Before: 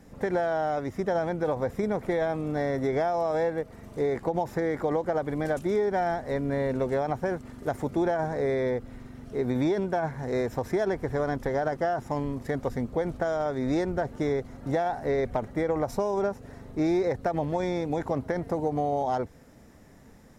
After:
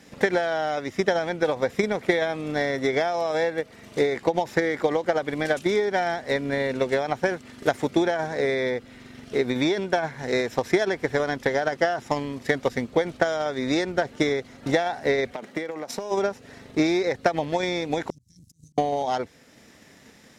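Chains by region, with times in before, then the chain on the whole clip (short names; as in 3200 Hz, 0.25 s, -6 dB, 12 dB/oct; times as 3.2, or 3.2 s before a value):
15.31–16.1 HPF 170 Hz 24 dB/oct + compressor 10:1, threshold -30 dBFS + crackle 130/s -52 dBFS
18.1–18.78 Chebyshev band-stop 120–6400 Hz, order 3 + auto swell 0.139 s + tube stage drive 36 dB, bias 0.75
whole clip: weighting filter D; transient shaper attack +7 dB, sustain -2 dB; gain +1.5 dB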